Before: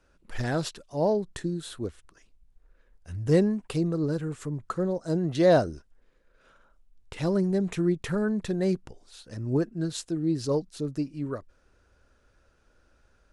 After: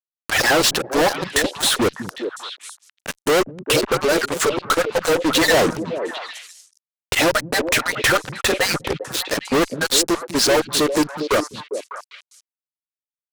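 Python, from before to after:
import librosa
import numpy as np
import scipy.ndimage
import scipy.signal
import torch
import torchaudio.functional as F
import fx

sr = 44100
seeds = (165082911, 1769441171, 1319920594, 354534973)

p1 = fx.hpss_only(x, sr, part='percussive')
p2 = scipy.signal.sosfilt(scipy.signal.butter(2, 40.0, 'highpass', fs=sr, output='sos'), p1)
p3 = fx.bass_treble(p2, sr, bass_db=-10, treble_db=-3)
p4 = fx.fuzz(p3, sr, gain_db=50.0, gate_db=-50.0)
p5 = fx.peak_eq(p4, sr, hz=220.0, db=-2.5, octaves=1.8)
y = p5 + fx.echo_stepped(p5, sr, ms=201, hz=160.0, octaves=1.4, feedback_pct=70, wet_db=-3, dry=0)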